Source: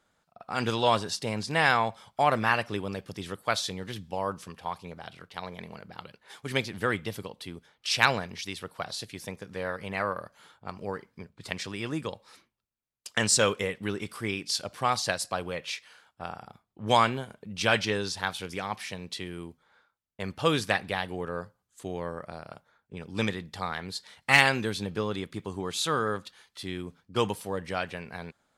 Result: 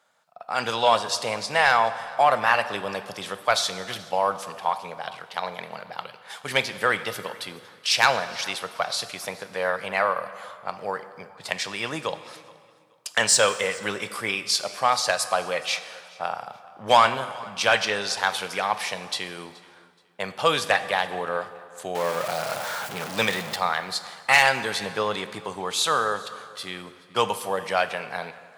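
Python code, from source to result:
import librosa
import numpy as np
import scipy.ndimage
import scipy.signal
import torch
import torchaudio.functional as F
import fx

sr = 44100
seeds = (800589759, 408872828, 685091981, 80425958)

p1 = fx.zero_step(x, sr, step_db=-33.5, at=(21.95, 23.56))
p2 = scipy.signal.sosfilt(scipy.signal.butter(4, 120.0, 'highpass', fs=sr, output='sos'), p1)
p3 = fx.low_shelf_res(p2, sr, hz=450.0, db=-9.0, q=1.5)
p4 = fx.rider(p3, sr, range_db=4, speed_s=0.5)
p5 = p3 + (p4 * librosa.db_to_amplitude(0.0))
p6 = 10.0 ** (-6.5 / 20.0) * np.tanh(p5 / 10.0 ** (-6.5 / 20.0))
p7 = p6 + fx.echo_feedback(p6, sr, ms=425, feedback_pct=26, wet_db=-23.5, dry=0)
y = fx.rev_plate(p7, sr, seeds[0], rt60_s=2.0, hf_ratio=0.75, predelay_ms=0, drr_db=11.5)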